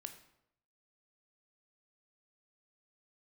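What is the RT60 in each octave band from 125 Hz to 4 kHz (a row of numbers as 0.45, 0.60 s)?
0.95, 0.75, 0.80, 0.75, 0.65, 0.55 s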